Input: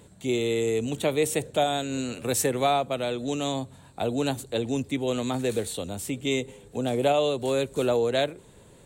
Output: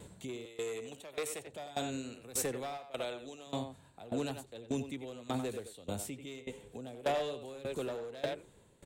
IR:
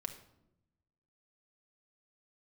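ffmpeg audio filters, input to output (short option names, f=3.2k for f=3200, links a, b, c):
-filter_complex "[0:a]asplit=2[a][b];[b]adelay=90,highpass=300,lowpass=3.4k,asoftclip=type=hard:threshold=-20.5dB,volume=-6dB[c];[a][c]amix=inputs=2:normalize=0,volume=19.5dB,asoftclip=hard,volume=-19.5dB,asettb=1/sr,asplit=3[d][e][f];[d]atrim=end=0.454[g];[e]atrim=start=0.45:end=1.47,asetpts=PTS-STARTPTS,afade=t=in:d=0.004:c=qsin,afade=t=out:st=1.016:d=0.004:c=qsin,acrossover=split=470|3000[h][i][j];[h]acompressor=threshold=-39dB:ratio=6[k];[k][i][j]amix=inputs=3:normalize=0[l];[f]atrim=start=1.466[m];[g][l]acrossfade=d=0.004:c1=hsin:c2=qsin[n];[n][m]acrossfade=d=0.004:c1=qsin:c2=hsin,asettb=1/sr,asplit=3[o][p][q];[o]atrim=end=2.774[r];[p]atrim=start=2.77:end=3.47,asetpts=PTS-STARTPTS,afade=t=in:d=0.004:c=qsin,afade=t=out:st=0.696:d=0.004:c=qsin,equalizer=f=160:t=o:w=2:g=-10[s];[q]atrim=start=3.466[t];[r][s]acrossfade=d=0.004:c1=hsin:c2=qsin[u];[u][t]acrossfade=d=0.004:c1=qsin:c2=hsin,alimiter=level_in=3.5dB:limit=-24dB:level=0:latency=1:release=376,volume=-3.5dB,aeval=exprs='val(0)*pow(10,-19*if(lt(mod(1.7*n/s,1),2*abs(1.7)/1000),1-mod(1.7*n/s,1)/(2*abs(1.7)/1000),(mod(1.7*n/s,1)-2*abs(1.7)/1000)/(1-2*abs(1.7)/1000))/20)':c=same,volume=2dB"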